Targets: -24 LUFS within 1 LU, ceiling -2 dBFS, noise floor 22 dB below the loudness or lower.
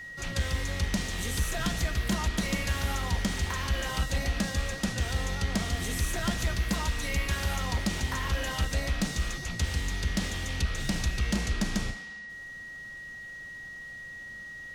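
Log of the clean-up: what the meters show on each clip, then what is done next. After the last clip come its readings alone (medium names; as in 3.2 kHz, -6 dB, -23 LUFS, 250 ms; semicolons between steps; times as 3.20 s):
steady tone 1.9 kHz; tone level -40 dBFS; loudness -31.5 LUFS; peak level -19.5 dBFS; loudness target -24.0 LUFS
-> band-stop 1.9 kHz, Q 30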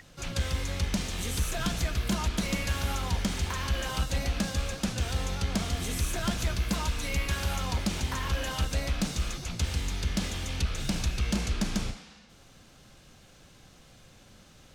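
steady tone not found; loudness -31.0 LUFS; peak level -20.0 dBFS; loudness target -24.0 LUFS
-> trim +7 dB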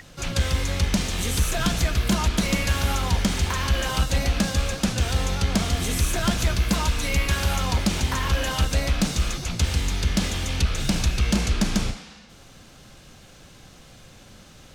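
loudness -24.0 LUFS; peak level -13.0 dBFS; noise floor -48 dBFS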